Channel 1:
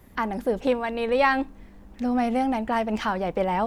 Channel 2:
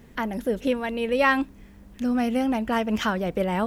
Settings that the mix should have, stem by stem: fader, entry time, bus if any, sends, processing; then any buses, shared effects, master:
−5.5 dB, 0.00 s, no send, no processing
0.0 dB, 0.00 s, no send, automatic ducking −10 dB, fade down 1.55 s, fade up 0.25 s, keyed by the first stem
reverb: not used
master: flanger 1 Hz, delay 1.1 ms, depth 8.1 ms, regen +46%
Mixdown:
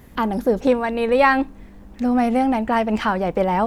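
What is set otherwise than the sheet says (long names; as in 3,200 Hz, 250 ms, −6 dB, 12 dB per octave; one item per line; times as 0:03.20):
stem 1 −5.5 dB → +4.0 dB
master: missing flanger 1 Hz, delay 1.1 ms, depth 8.1 ms, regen +46%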